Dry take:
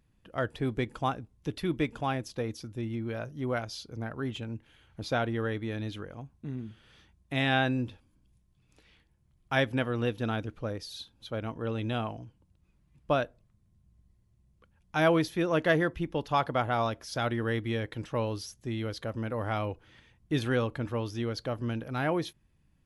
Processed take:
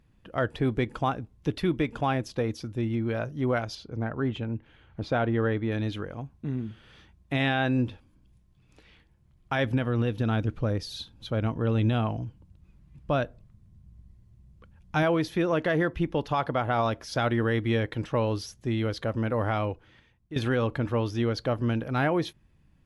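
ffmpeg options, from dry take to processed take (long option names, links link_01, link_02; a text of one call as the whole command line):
ffmpeg -i in.wav -filter_complex "[0:a]asettb=1/sr,asplit=3[link_01][link_02][link_03];[link_01]atrim=end=3.754[link_04];[link_02]atrim=start=3.75:end=5.72,asetpts=PTS-STARTPTS,afade=type=in:duration=0.004:curve=qsin,afade=type=out:start_time=1.966:duration=0.004:curve=qsin,lowpass=frequency=2300:poles=1[link_05];[link_03]atrim=start=5.716[link_06];[link_04][link_05]acrossfade=duration=0.004:curve1=hsin:curve2=qsin[link_07];[link_07][link_06]acrossfade=duration=0.004:curve1=qsin:curve2=hsin,asettb=1/sr,asplit=3[link_08][link_09][link_10];[link_08]atrim=end=9.644[link_11];[link_09]atrim=start=9.64:end=15.03,asetpts=PTS-STARTPTS,afade=type=in:duration=0.004:curve=qsin,afade=type=out:start_time=5.386:duration=0.004:curve=qsin,bass=frequency=250:gain=6,treble=frequency=4000:gain=2[link_12];[link_10]atrim=start=15.026[link_13];[link_11][link_12]acrossfade=duration=0.004:curve1=hsin:curve2=qsin[link_14];[link_14][link_13]acrossfade=duration=0.004:curve1=qsin:curve2=hsin,asplit=2[link_15][link_16];[link_15]atrim=end=20.36,asetpts=PTS-STARTPTS,afade=type=out:start_time=19.44:duration=0.92:silence=0.149624[link_17];[link_16]atrim=start=20.36,asetpts=PTS-STARTPTS,afade=type=in:duration=0.004:curve=hsin:silence=0.149624[link_18];[link_17][link_18]concat=n=2:v=0:a=1,highshelf=frequency=5800:gain=-9,alimiter=limit=-22dB:level=0:latency=1:release=126,volume=6dB" out.wav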